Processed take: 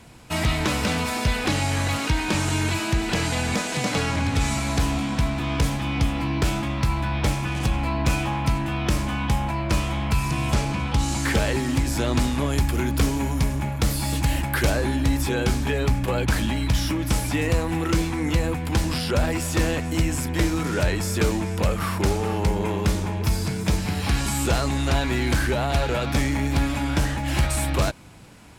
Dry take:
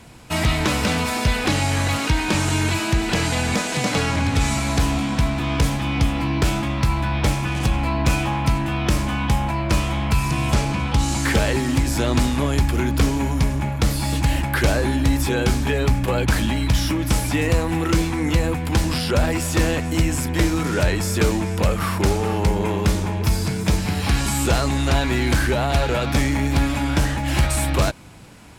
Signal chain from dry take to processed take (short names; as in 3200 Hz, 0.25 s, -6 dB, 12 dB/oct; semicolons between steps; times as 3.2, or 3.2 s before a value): 12.5–14.7 high shelf 9100 Hz +6.5 dB; gain -3 dB